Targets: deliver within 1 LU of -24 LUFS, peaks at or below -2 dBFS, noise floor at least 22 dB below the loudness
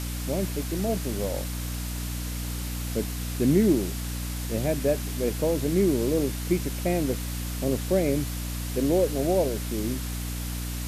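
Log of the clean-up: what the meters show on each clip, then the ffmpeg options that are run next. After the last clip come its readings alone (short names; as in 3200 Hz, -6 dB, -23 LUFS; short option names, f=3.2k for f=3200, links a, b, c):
hum 60 Hz; harmonics up to 300 Hz; hum level -30 dBFS; noise floor -32 dBFS; noise floor target -49 dBFS; loudness -27.0 LUFS; peak -10.0 dBFS; loudness target -24.0 LUFS
-> -af "bandreject=f=60:t=h:w=6,bandreject=f=120:t=h:w=6,bandreject=f=180:t=h:w=6,bandreject=f=240:t=h:w=6,bandreject=f=300:t=h:w=6"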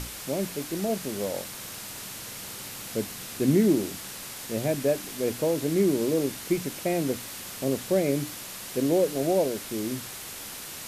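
hum none; noise floor -40 dBFS; noise floor target -51 dBFS
-> -af "afftdn=nr=11:nf=-40"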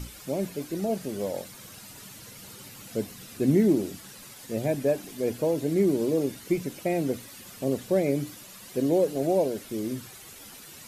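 noise floor -47 dBFS; noise floor target -50 dBFS
-> -af "afftdn=nr=6:nf=-47"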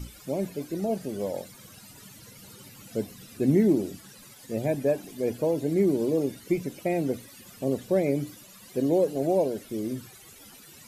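noise floor -50 dBFS; loudness -28.0 LUFS; peak -11.5 dBFS; loudness target -24.0 LUFS
-> -af "volume=4dB"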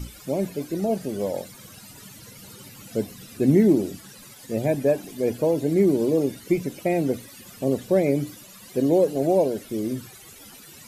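loudness -24.0 LUFS; peak -7.5 dBFS; noise floor -46 dBFS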